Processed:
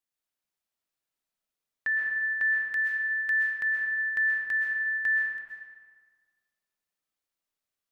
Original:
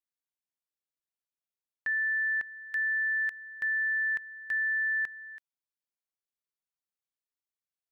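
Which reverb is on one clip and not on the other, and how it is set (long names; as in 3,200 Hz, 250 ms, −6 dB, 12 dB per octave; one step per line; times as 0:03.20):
comb and all-pass reverb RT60 1.7 s, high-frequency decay 0.6×, pre-delay 90 ms, DRR −2.5 dB
level +2.5 dB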